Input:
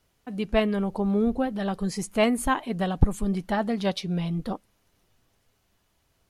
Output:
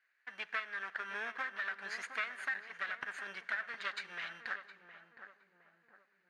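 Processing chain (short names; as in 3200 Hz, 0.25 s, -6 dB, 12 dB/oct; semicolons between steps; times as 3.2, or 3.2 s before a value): minimum comb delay 0.46 ms; in parallel at -11.5 dB: sample-and-hold 15×; on the sum: ladder band-pass 1800 Hz, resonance 70%; compressor 6:1, threshold -47 dBFS, peak gain reduction 18 dB; darkening echo 0.714 s, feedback 51%, low-pass 1200 Hz, level -8 dB; on a send at -19 dB: reverb RT60 2.2 s, pre-delay 37 ms; on the sum: mismatched tape noise reduction decoder only; gain +11.5 dB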